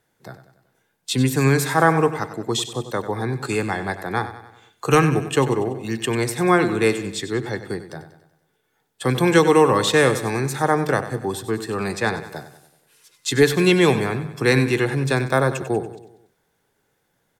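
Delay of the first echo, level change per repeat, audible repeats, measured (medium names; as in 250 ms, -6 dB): 95 ms, -6.0 dB, 4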